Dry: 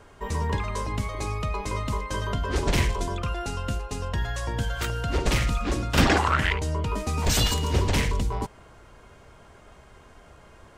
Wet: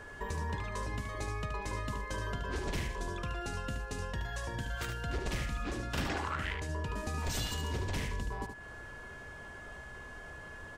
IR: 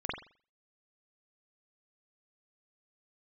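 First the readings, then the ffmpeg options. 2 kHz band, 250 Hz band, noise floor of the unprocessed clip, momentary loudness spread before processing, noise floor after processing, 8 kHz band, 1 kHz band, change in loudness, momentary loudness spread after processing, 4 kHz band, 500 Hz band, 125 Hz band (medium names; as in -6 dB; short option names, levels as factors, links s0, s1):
-8.5 dB, -11.5 dB, -51 dBFS, 8 LU, -48 dBFS, -11.5 dB, -10.5 dB, -11.5 dB, 12 LU, -12.0 dB, -10.5 dB, -11.0 dB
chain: -filter_complex "[0:a]acompressor=threshold=0.0126:ratio=3,aeval=exprs='val(0)+0.00355*sin(2*PI*1700*n/s)':c=same,asplit=2[s0][s1];[s1]aecho=0:1:74:0.447[s2];[s0][s2]amix=inputs=2:normalize=0"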